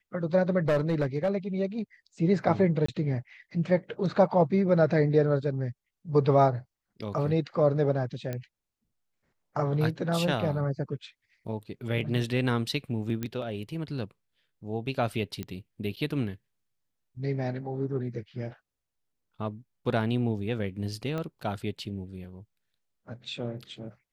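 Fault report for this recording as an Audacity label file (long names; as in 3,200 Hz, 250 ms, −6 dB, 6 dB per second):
0.680000	1.290000	clipping −20.5 dBFS
2.860000	2.880000	drop-out 24 ms
8.330000	8.330000	click −20 dBFS
13.230000	13.230000	click −18 dBFS
15.430000	15.430000	click −21 dBFS
21.180000	21.180000	click −21 dBFS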